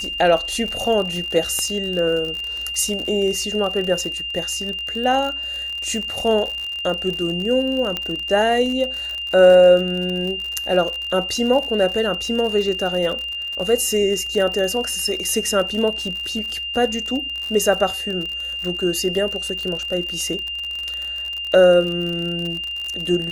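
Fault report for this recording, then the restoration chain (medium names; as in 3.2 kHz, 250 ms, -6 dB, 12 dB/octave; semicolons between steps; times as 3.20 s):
crackle 59 per s -25 dBFS
whine 2.8 kHz -25 dBFS
1.59 s: pop -11 dBFS
7.97 s: pop -10 dBFS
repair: de-click; band-stop 2.8 kHz, Q 30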